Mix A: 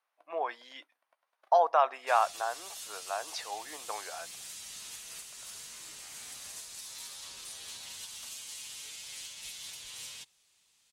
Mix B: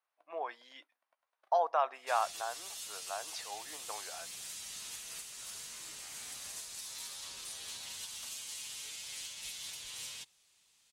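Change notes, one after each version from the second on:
speech −5.5 dB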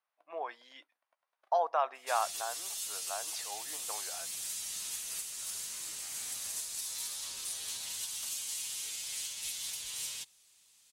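background: add high-shelf EQ 6,100 Hz +10 dB

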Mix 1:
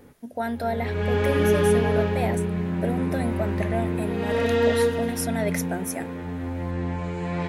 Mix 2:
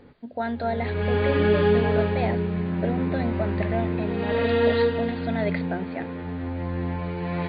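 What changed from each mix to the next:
master: add linear-phase brick-wall low-pass 4,800 Hz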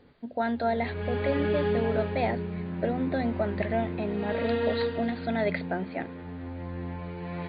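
background −7.5 dB

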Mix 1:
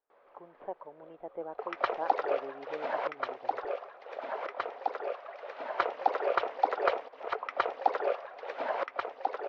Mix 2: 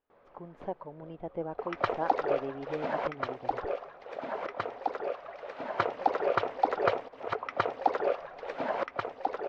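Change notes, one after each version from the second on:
speech: remove high-frequency loss of the air 470 metres
master: remove three-way crossover with the lows and the highs turned down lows −20 dB, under 360 Hz, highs −14 dB, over 6,400 Hz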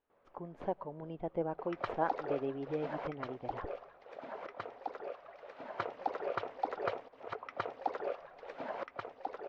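background −9.0 dB
reverb: on, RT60 0.70 s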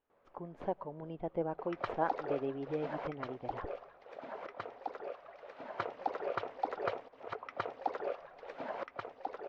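nothing changed

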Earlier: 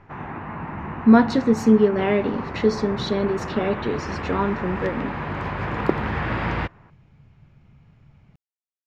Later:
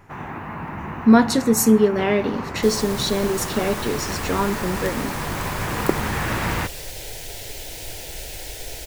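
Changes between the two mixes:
second sound: unmuted
master: remove high-frequency loss of the air 220 metres

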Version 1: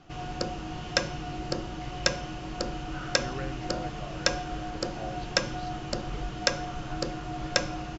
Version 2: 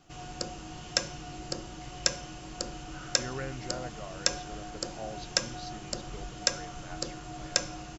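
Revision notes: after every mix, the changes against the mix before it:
background −7.0 dB
master: remove high-frequency loss of the air 150 metres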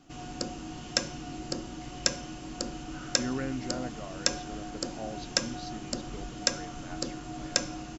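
master: add parametric band 260 Hz +13 dB 0.43 octaves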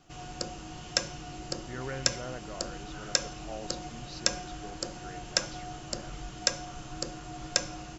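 speech: entry −1.50 s
master: add parametric band 260 Hz −13 dB 0.43 octaves

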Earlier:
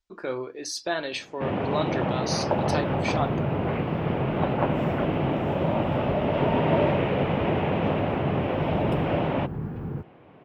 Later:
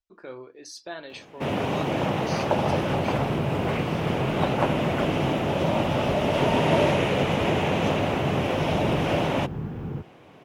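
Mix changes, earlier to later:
speech −9.0 dB
first sound: remove high-frequency loss of the air 410 metres

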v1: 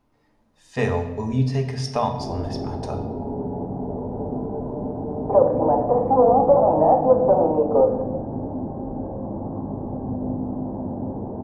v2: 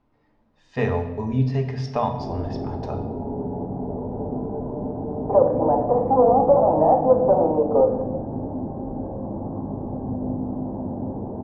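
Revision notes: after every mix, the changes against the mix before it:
master: add high-frequency loss of the air 180 metres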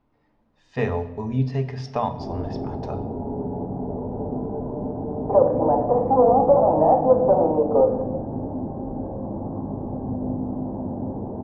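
speech: send −6.0 dB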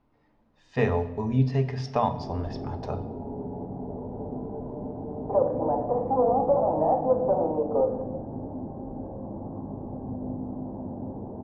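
background −6.5 dB

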